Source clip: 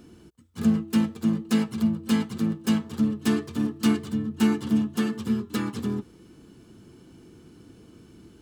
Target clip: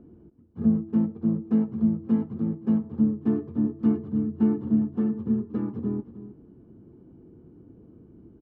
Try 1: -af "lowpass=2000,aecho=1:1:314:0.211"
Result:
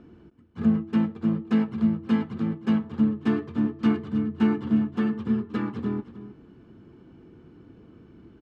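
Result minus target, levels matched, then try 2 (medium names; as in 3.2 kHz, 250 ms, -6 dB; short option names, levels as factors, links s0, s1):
2 kHz band +16.0 dB
-af "lowpass=610,aecho=1:1:314:0.211"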